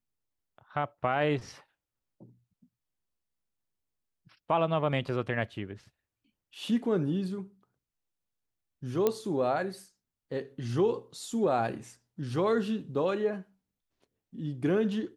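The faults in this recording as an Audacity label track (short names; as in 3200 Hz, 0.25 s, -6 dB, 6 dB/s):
9.070000	9.070000	pop -13 dBFS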